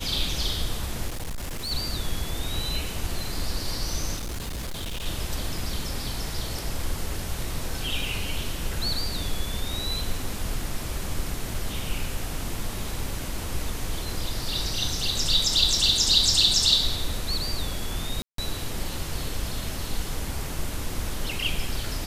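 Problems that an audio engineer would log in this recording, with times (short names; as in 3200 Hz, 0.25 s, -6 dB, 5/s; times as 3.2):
1.07–1.72 clipped -28 dBFS
4.16–5.06 clipped -28.5 dBFS
18.22–18.38 gap 0.163 s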